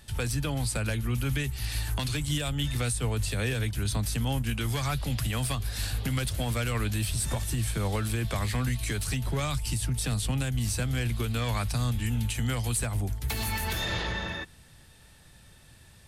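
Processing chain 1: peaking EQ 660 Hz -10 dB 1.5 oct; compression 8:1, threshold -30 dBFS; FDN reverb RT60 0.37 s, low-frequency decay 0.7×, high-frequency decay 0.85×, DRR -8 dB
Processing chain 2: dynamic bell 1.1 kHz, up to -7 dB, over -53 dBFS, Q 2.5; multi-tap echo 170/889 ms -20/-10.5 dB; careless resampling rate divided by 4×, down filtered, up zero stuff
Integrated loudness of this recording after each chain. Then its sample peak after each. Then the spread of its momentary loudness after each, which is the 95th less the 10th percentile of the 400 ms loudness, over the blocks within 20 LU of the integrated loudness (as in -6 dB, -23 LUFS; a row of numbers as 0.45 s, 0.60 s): -27.5 LUFS, -20.5 LUFS; -12.5 dBFS, -5.5 dBFS; 3 LU, 3 LU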